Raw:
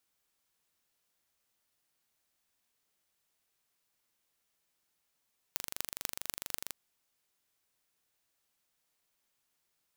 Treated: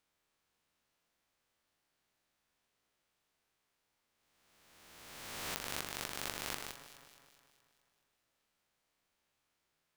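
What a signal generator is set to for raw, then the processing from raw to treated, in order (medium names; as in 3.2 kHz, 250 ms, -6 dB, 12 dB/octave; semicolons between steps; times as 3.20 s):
pulse train 24.4 per s, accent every 6, -5 dBFS 1.17 s
reverse spectral sustain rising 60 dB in 1.93 s; low-pass 3 kHz 6 dB/octave; echo whose repeats swap between lows and highs 106 ms, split 2.1 kHz, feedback 74%, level -10 dB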